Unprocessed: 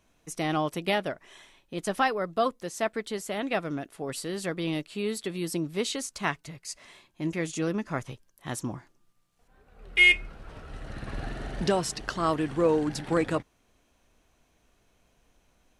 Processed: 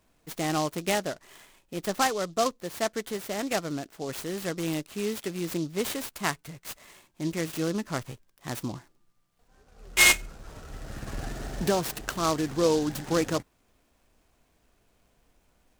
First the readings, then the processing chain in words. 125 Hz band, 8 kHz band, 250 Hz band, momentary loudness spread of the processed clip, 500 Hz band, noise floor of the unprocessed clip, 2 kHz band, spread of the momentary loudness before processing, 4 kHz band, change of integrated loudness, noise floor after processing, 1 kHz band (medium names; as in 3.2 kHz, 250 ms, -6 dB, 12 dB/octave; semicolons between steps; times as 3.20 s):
0.0 dB, +7.0 dB, 0.0 dB, 16 LU, 0.0 dB, -69 dBFS, -2.0 dB, 16 LU, +1.5 dB, 0.0 dB, -69 dBFS, 0.0 dB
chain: delay time shaken by noise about 4.7 kHz, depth 0.056 ms